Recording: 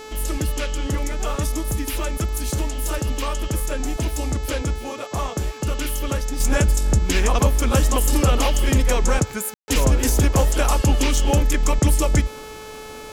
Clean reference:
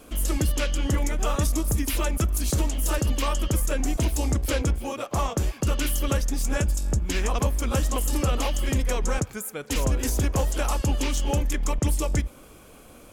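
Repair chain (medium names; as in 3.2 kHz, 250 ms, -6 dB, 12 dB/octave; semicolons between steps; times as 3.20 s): de-hum 433.2 Hz, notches 18; room tone fill 9.54–9.68 s; trim 0 dB, from 6.40 s -6.5 dB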